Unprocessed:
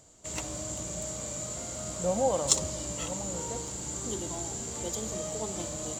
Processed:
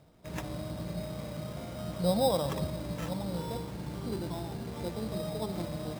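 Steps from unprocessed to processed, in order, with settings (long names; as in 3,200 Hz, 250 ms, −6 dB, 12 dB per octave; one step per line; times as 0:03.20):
elliptic low-pass filter 2,700 Hz
parametric band 160 Hz +8.5 dB 0.87 octaves
decimation without filtering 10×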